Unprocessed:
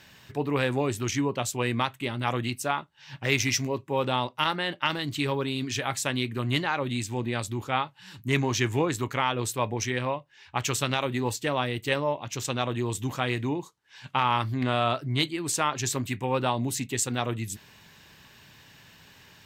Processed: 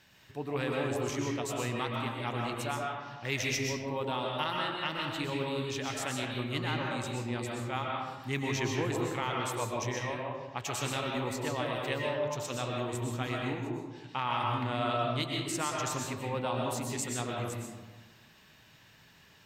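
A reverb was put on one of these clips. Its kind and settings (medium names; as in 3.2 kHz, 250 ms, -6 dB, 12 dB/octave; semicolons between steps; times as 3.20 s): algorithmic reverb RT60 1.3 s, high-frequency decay 0.5×, pre-delay 85 ms, DRR -1.5 dB; trim -9 dB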